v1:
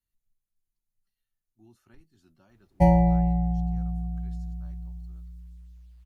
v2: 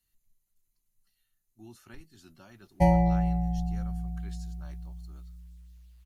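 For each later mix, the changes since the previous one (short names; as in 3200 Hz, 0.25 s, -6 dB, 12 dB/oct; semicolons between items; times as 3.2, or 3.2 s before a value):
speech +10.0 dB; master: add tilt shelf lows -3.5 dB, about 1400 Hz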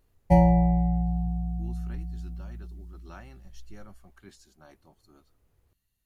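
background: entry -2.50 s; master: add tilt shelf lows +3.5 dB, about 1400 Hz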